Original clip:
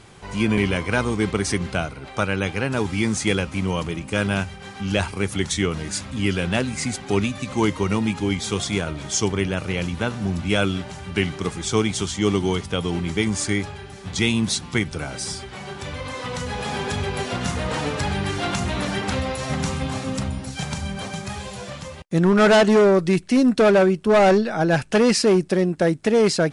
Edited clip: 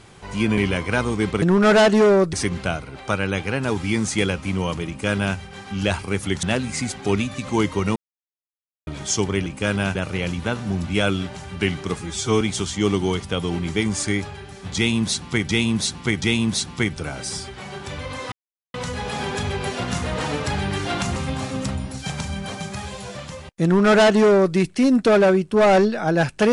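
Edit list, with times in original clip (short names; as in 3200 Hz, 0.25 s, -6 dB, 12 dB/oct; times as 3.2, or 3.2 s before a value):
3.97–4.46 copy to 9.5
5.52–6.47 cut
8–8.91 mute
11.54–11.82 stretch 1.5×
14.17–14.9 loop, 3 plays
16.27 insert silence 0.42 s
18.69–19.69 cut
22.17–23.08 copy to 1.42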